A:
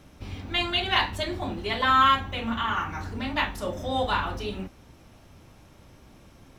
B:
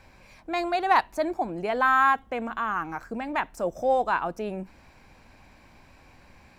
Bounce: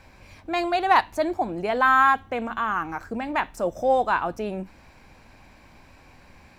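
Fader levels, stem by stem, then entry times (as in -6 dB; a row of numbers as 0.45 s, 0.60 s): -16.0 dB, +2.5 dB; 0.00 s, 0.00 s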